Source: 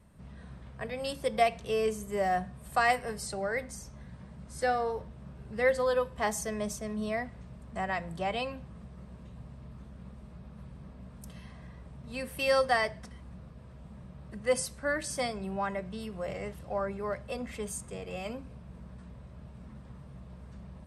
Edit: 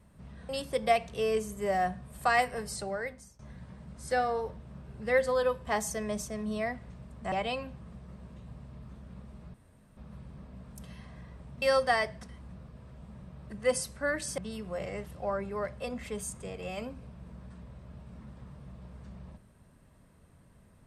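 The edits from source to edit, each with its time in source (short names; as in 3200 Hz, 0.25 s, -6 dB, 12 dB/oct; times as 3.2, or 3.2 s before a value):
0.49–1 cut
3.32–3.9 fade out, to -20.5 dB
7.83–8.21 cut
10.43 insert room tone 0.43 s
12.08–12.44 cut
15.2–15.86 cut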